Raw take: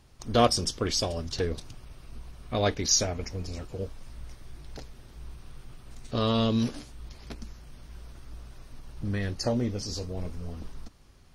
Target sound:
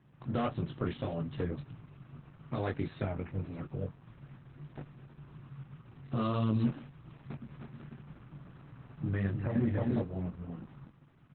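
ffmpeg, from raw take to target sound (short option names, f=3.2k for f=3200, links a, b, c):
-filter_complex "[0:a]flanger=delay=18.5:depth=3.7:speed=1.7,highpass=f=110:w=0.5412,highpass=f=110:w=1.3066,equalizer=f=140:t=q:w=4:g=9,equalizer=f=210:t=q:w=4:g=-3,equalizer=f=440:t=q:w=4:g=-5,equalizer=f=860:t=q:w=4:g=4,equalizer=f=1.2k:t=q:w=4:g=4,equalizer=f=2.2k:t=q:w=4:g=-5,lowpass=f=2.5k:w=0.5412,lowpass=f=2.5k:w=1.3066,asoftclip=type=tanh:threshold=-17dB,asplit=3[a][b][c];[a]afade=t=out:st=7.45:d=0.02[d];[b]aecho=1:1:310|496|607.6|674.6|714.7:0.631|0.398|0.251|0.158|0.1,afade=t=in:st=7.45:d=0.02,afade=t=out:st=10.02:d=0.02[e];[c]afade=t=in:st=10.02:d=0.02[f];[d][e][f]amix=inputs=3:normalize=0,alimiter=level_in=0.5dB:limit=-24dB:level=0:latency=1:release=161,volume=-0.5dB,equalizer=f=870:t=o:w=1.7:g=-7,volume=5.5dB" -ar 48000 -c:a libopus -b:a 8k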